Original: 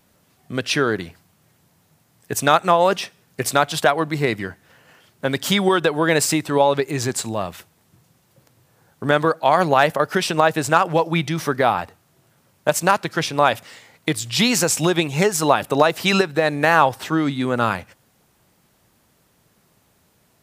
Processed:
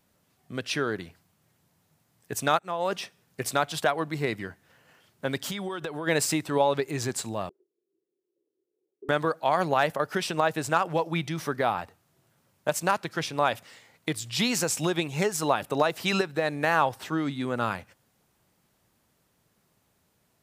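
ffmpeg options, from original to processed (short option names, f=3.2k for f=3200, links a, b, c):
-filter_complex "[0:a]asplit=3[a][b][c];[a]afade=t=out:st=5.38:d=0.02[d];[b]acompressor=threshold=-22dB:ratio=6:attack=3.2:release=140:knee=1:detection=peak,afade=t=in:st=5.38:d=0.02,afade=t=out:st=6.06:d=0.02[e];[c]afade=t=in:st=6.06:d=0.02[f];[d][e][f]amix=inputs=3:normalize=0,asettb=1/sr,asplit=3[g][h][i];[g]atrim=end=7.494[j];[h]atrim=start=7.49:end=9.09,asetpts=PTS-STARTPTS,afade=t=in:d=0.004:c=qsin,afade=t=out:st=1.596:d=0.004:c=qsin,asuperpass=centerf=380:order=4:qfactor=4.3[k];[i]atrim=start=9.086[l];[j][k]acrossfade=d=0.004:c1=hsin:c2=qsin[m];[m][l]acrossfade=d=0.004:c1=qsin:c2=hsin,asplit=2[n][o];[n]atrim=end=2.59,asetpts=PTS-STARTPTS,afade=t=out:st=2.586:d=0.004:c=hsin:silence=0.0944061[p];[o]atrim=start=2.59,asetpts=PTS-STARTPTS,afade=t=in:d=0.41:silence=0.0944061[q];[p][q]concat=n=2:v=0:a=1,dynaudnorm=f=130:g=31:m=11.5dB,volume=-9dB"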